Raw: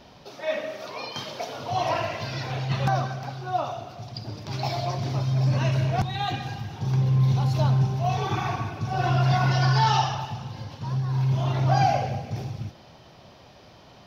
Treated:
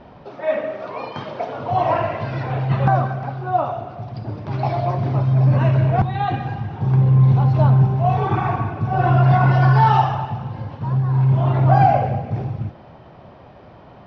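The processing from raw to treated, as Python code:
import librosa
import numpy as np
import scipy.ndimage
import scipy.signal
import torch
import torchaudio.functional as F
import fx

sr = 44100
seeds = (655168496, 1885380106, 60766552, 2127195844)

y = scipy.signal.sosfilt(scipy.signal.butter(2, 1600.0, 'lowpass', fs=sr, output='sos'), x)
y = y * 10.0 ** (7.5 / 20.0)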